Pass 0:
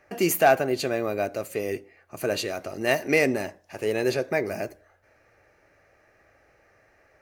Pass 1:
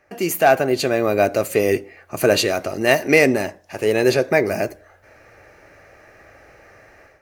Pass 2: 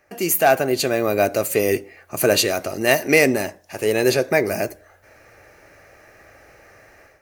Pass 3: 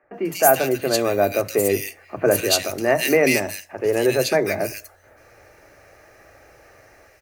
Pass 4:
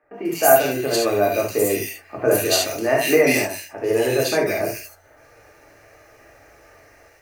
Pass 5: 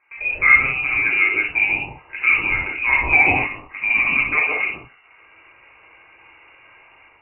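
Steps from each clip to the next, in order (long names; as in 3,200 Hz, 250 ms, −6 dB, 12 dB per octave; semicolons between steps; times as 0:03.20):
automatic gain control gain up to 13 dB
high-shelf EQ 6,400 Hz +9.5 dB; level −1.5 dB
three-band delay without the direct sound mids, lows, highs 30/140 ms, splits 190/2,000 Hz
reverb whose tail is shaped and stops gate 100 ms flat, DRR −1.5 dB; level −3.5 dB
voice inversion scrambler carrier 2,800 Hz; level +1 dB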